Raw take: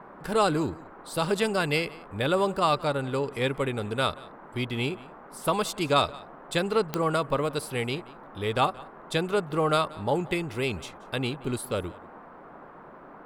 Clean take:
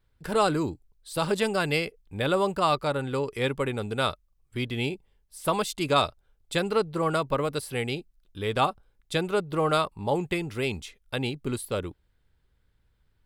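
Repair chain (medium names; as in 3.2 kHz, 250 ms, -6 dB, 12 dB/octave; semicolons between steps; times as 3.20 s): de-click; noise print and reduce 20 dB; inverse comb 179 ms -21.5 dB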